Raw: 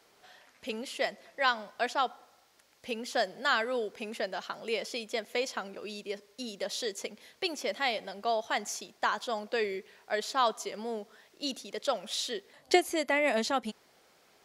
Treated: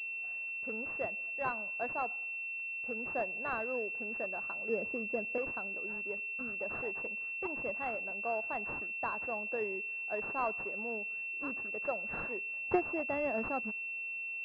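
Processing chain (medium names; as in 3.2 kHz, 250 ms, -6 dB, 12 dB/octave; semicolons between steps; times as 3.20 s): 4.69–5.38 s: tilt EQ -4 dB/octave; class-D stage that switches slowly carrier 2.7 kHz; trim -5.5 dB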